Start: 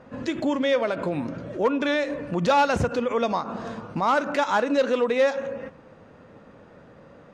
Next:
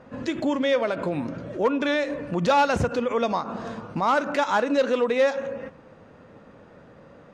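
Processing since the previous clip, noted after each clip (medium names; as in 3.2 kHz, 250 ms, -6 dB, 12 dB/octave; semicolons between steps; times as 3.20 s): no audible change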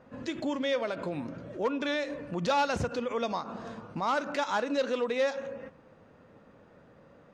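dynamic bell 4.8 kHz, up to +5 dB, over -46 dBFS, Q 0.96; trim -7.5 dB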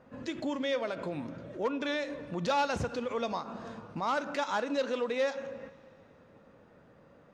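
plate-style reverb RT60 3.1 s, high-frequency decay 0.95×, DRR 18.5 dB; trim -2 dB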